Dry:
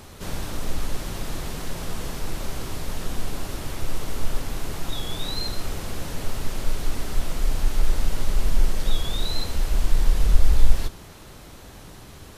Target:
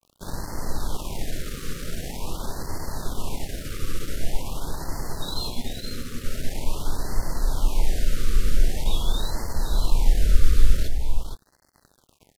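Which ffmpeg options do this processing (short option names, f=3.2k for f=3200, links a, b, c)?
-filter_complex "[0:a]asettb=1/sr,asplit=3[a][b][c];[a]atrim=end=5.494[d];[b]atrim=start=5.49:end=6.26,asetpts=PTS-STARTPTS,afade=t=in:d=0.004:c=qsin,afade=t=out:st=0.766:d=0.004:c=qsin,tremolo=f=240:d=0.4[e];[c]atrim=start=6.256[f];[d][e]acrossfade=d=0.004:c1=hsin:c2=qsin[g];[g][f]acrossfade=d=0.004:c1=qsin:c2=hsin,adynamicequalizer=threshold=0.00126:dfrequency=930:dqfactor=4.6:tfrequency=930:tqfactor=4.6:attack=5:release=100:ratio=0.375:range=3:mode=boostabove:tftype=bell,aeval=exprs='sgn(val(0))*max(abs(val(0))-0.0141,0)':c=same,asplit=2[h][i];[i]aecho=0:1:466:0.447[j];[h][j]amix=inputs=2:normalize=0,afftfilt=real='re*(1-between(b*sr/1024,780*pow(3000/780,0.5+0.5*sin(2*PI*0.45*pts/sr))/1.41,780*pow(3000/780,0.5+0.5*sin(2*PI*0.45*pts/sr))*1.41))':imag='im*(1-between(b*sr/1024,780*pow(3000/780,0.5+0.5*sin(2*PI*0.45*pts/sr))/1.41,780*pow(3000/780,0.5+0.5*sin(2*PI*0.45*pts/sr))*1.41))':win_size=1024:overlap=0.75"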